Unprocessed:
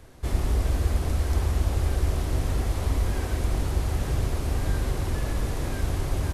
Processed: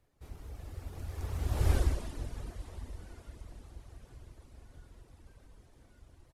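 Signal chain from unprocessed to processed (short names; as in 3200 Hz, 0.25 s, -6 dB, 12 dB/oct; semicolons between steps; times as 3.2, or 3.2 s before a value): Doppler pass-by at 1.74, 32 m/s, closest 4.3 m; reverb removal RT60 0.78 s; on a send: echo 0.16 s -11.5 dB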